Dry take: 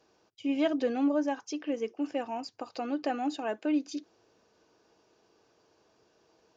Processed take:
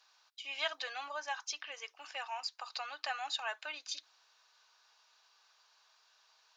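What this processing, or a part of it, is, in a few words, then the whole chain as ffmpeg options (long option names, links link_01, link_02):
headphones lying on a table: -af "highpass=frequency=1000:width=0.5412,highpass=frequency=1000:width=1.3066,equalizer=frequency=3900:width_type=o:width=0.38:gain=8,volume=3dB"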